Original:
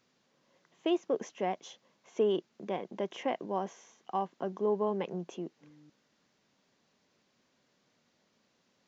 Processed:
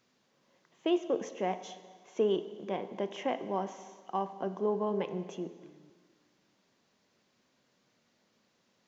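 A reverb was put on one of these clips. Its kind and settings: plate-style reverb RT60 1.7 s, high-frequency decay 0.9×, DRR 10 dB

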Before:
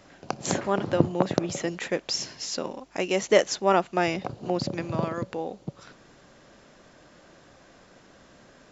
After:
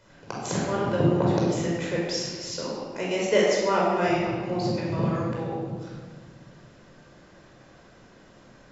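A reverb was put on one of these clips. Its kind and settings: simulated room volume 1900 m³, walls mixed, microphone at 4.9 m; trim -8 dB

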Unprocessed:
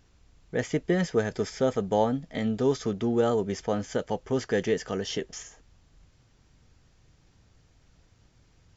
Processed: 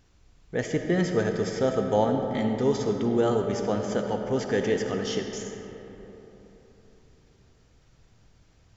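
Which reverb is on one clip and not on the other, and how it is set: algorithmic reverb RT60 3.8 s, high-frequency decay 0.45×, pre-delay 20 ms, DRR 4 dB

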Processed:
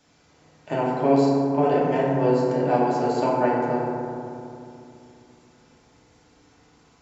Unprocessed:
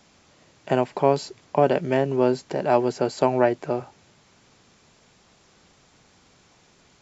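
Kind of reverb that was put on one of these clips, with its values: FDN reverb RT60 2.7 s, low-frequency decay 1.35×, high-frequency decay 0.3×, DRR -7 dB; trim -8 dB

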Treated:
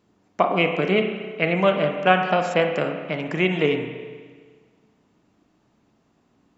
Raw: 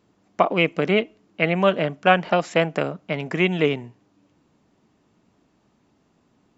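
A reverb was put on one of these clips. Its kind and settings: spring tank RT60 1.6 s, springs 32/46 ms, chirp 40 ms, DRR 4.5 dB; trim -1.5 dB

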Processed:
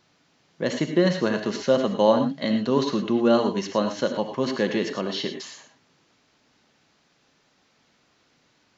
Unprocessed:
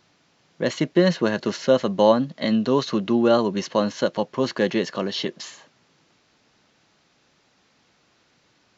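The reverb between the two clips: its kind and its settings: gated-style reverb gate 130 ms rising, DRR 6.5 dB; trim -2.5 dB

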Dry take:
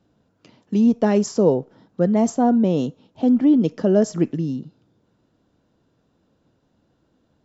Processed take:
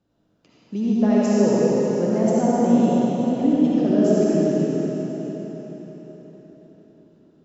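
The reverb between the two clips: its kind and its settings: algorithmic reverb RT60 4.8 s, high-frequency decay 0.9×, pre-delay 30 ms, DRR -8 dB; trim -8 dB

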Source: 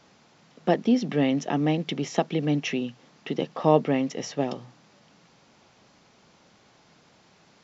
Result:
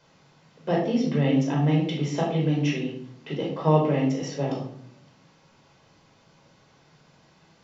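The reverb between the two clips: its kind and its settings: simulated room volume 1000 m³, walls furnished, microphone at 5 m; trim -7 dB

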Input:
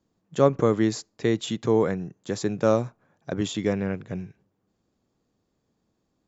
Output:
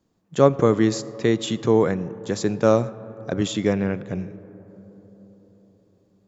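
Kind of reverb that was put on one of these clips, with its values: algorithmic reverb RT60 4.7 s, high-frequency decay 0.25×, pre-delay 25 ms, DRR 17.5 dB; trim +3.5 dB

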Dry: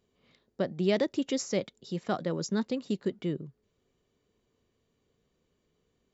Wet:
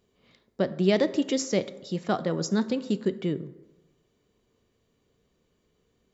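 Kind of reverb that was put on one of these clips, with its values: plate-style reverb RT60 1.1 s, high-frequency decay 0.5×, DRR 13 dB; trim +4 dB

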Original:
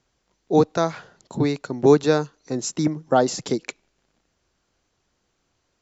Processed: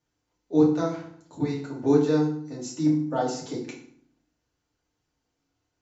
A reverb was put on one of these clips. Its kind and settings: FDN reverb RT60 0.59 s, low-frequency decay 1.45×, high-frequency decay 0.8×, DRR -5.5 dB; trim -15 dB

